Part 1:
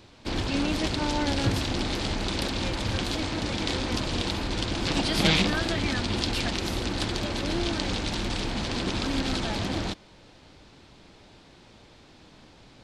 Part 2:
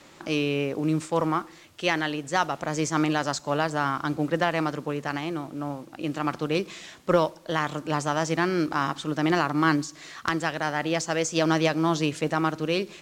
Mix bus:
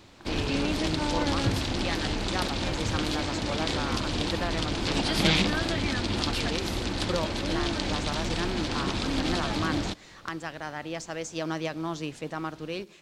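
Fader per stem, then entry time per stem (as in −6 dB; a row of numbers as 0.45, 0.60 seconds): −1.0, −9.0 decibels; 0.00, 0.00 seconds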